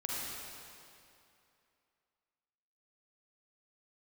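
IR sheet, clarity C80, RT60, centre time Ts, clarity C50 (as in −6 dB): −2.0 dB, 2.6 s, 176 ms, −4.5 dB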